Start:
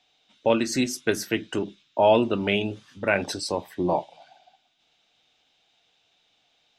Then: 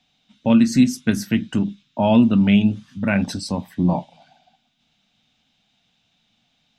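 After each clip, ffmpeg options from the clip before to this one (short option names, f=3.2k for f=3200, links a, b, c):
-af "lowshelf=f=290:t=q:w=3:g=9"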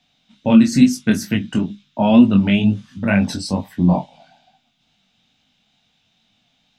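-af "flanger=delay=19.5:depth=4:speed=2.2,volume=5.5dB"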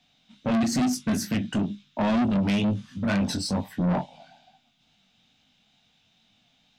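-af "asoftclip=type=tanh:threshold=-19dB,volume=-1.5dB"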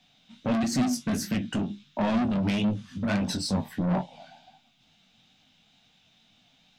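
-filter_complex "[0:a]asplit=2[a][b];[b]acompressor=threshold=-35dB:ratio=6,volume=1dB[c];[a][c]amix=inputs=2:normalize=0,flanger=delay=5.1:depth=7.8:regen=66:speed=1.5:shape=sinusoidal"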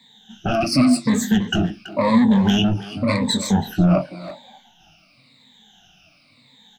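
-filter_complex "[0:a]afftfilt=real='re*pow(10,24/40*sin(2*PI*(0.99*log(max(b,1)*sr/1024/100)/log(2)-(-0.92)*(pts-256)/sr)))':imag='im*pow(10,24/40*sin(2*PI*(0.99*log(max(b,1)*sr/1024/100)/log(2)-(-0.92)*(pts-256)/sr)))':win_size=1024:overlap=0.75,asplit=2[a][b];[b]adelay=330,highpass=300,lowpass=3.4k,asoftclip=type=hard:threshold=-19.5dB,volume=-12dB[c];[a][c]amix=inputs=2:normalize=0,volume=3.5dB"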